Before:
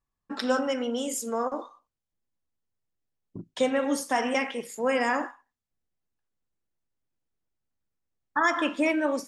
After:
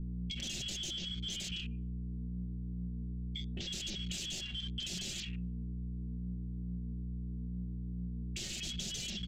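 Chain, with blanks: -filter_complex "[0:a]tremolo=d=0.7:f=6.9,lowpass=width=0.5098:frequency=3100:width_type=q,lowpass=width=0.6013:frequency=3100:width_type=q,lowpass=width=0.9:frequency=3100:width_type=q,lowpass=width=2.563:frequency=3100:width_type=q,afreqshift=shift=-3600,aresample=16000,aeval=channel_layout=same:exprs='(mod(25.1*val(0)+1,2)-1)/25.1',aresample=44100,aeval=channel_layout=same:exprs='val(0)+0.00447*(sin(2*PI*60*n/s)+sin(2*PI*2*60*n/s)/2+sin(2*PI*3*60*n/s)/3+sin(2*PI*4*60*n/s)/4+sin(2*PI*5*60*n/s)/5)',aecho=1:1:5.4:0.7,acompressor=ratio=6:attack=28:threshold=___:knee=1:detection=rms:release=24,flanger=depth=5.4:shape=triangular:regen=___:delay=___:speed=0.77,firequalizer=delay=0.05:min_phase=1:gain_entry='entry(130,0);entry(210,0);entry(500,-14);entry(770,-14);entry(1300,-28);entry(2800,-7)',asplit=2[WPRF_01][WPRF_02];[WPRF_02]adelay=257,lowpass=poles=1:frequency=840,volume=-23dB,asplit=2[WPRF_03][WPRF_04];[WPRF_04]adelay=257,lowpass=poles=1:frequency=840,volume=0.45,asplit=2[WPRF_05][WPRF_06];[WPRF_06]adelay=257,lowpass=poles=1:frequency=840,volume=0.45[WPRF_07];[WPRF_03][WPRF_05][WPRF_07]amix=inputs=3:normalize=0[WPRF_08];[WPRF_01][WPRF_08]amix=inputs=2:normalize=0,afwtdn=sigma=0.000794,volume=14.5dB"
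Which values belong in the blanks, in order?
-45dB, 74, 9.3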